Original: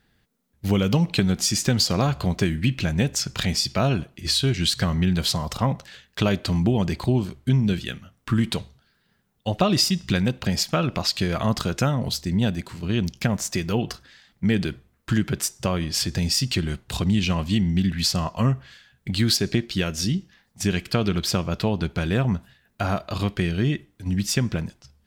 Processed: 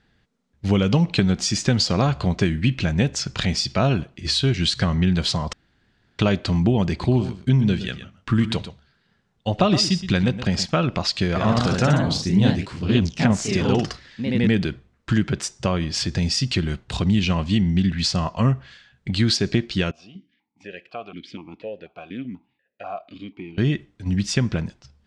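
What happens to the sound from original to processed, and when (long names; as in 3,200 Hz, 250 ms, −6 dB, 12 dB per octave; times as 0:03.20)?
0:05.53–0:06.19: fill with room tone
0:06.89–0:10.66: single-tap delay 120 ms −12 dB
0:11.27–0:14.57: delay with pitch and tempo change per echo 87 ms, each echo +1 semitone, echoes 3
0:19.91–0:23.58: formant filter that steps through the vowels 4.1 Hz
whole clip: Bessel low-pass filter 5,600 Hz, order 6; level +2 dB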